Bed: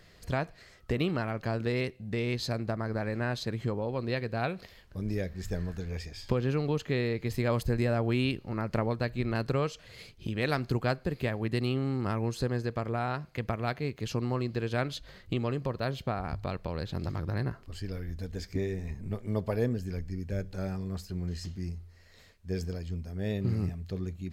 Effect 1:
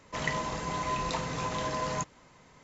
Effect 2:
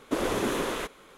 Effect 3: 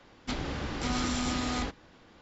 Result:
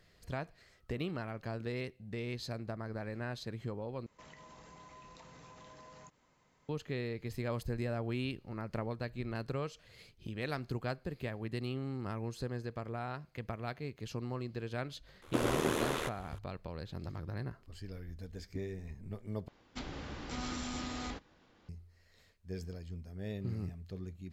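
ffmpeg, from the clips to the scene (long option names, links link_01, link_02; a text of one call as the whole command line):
ffmpeg -i bed.wav -i cue0.wav -i cue1.wav -i cue2.wav -filter_complex "[0:a]volume=-8.5dB[link_01];[1:a]acompressor=threshold=-38dB:ratio=6:attack=3.2:release=140:knee=1:detection=peak[link_02];[2:a]aeval=exprs='val(0)*sin(2*PI*39*n/s)':channel_layout=same[link_03];[link_01]asplit=3[link_04][link_05][link_06];[link_04]atrim=end=4.064[link_07];[link_02]atrim=end=2.63,asetpts=PTS-STARTPTS,volume=-13.5dB[link_08];[link_05]atrim=start=6.686:end=19.484[link_09];[3:a]atrim=end=2.21,asetpts=PTS-STARTPTS,volume=-9dB[link_10];[link_06]atrim=start=21.686[link_11];[link_03]atrim=end=1.17,asetpts=PTS-STARTPTS,volume=-1.5dB,afade=type=in:duration=0.004:curve=hsin,afade=type=out:start_time=1.166:duration=0.004:curve=hsin,adelay=15220[link_12];[link_07][link_08]acrossfade=duration=0.004:curve1=hsin:curve2=hsin[link_13];[link_13][link_09]acrossfade=duration=0.004:curve1=hsin:curve2=hsin[link_14];[link_14][link_10]acrossfade=duration=0.004:curve1=hsin:curve2=hsin[link_15];[link_15][link_11]acrossfade=duration=0.004:curve1=hsin:curve2=hsin[link_16];[link_16][link_12]amix=inputs=2:normalize=0" out.wav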